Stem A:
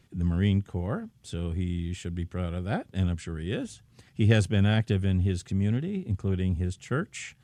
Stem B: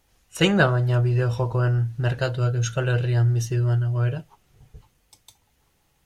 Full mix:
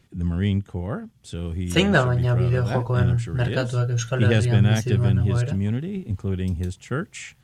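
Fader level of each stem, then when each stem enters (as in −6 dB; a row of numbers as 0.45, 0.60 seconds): +2.0, 0.0 decibels; 0.00, 1.35 seconds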